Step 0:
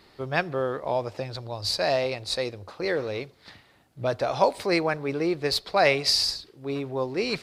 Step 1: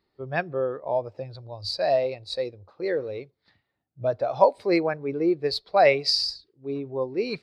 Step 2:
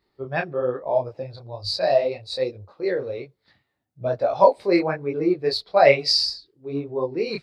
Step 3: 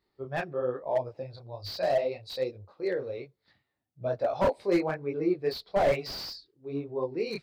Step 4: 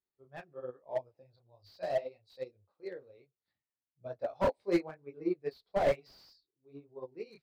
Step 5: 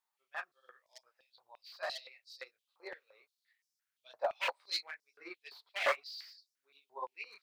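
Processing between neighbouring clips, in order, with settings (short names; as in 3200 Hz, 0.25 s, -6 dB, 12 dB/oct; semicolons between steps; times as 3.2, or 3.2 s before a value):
spectral expander 1.5:1; gain +3.5 dB
detuned doubles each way 40 cents; gain +6.5 dB
slew limiter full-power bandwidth 120 Hz; gain -6 dB
upward expander 2.5:1, over -34 dBFS; gain -1.5 dB
stepped high-pass 5.8 Hz 920–5300 Hz; gain +4.5 dB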